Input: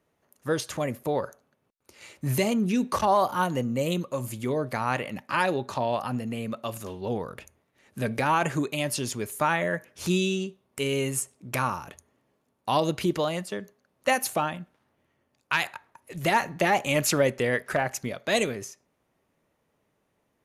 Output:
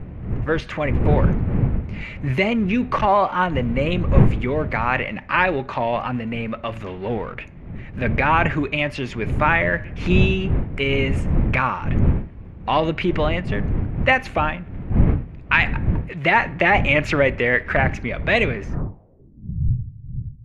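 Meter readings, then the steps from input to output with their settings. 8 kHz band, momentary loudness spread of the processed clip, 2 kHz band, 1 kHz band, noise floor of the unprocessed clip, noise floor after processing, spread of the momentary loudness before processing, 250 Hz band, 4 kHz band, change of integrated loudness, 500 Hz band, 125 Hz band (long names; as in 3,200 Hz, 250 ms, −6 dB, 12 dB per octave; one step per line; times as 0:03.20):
below −15 dB, 12 LU, +10.0 dB, +5.5 dB, −74 dBFS, −40 dBFS, 11 LU, +6.5 dB, +3.0 dB, +7.0 dB, +5.0 dB, +12.5 dB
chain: mu-law and A-law mismatch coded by mu
wind on the microphone 130 Hz −27 dBFS
low-pass filter sweep 2,300 Hz → 120 Hz, 0:18.61–0:19.61
level +3.5 dB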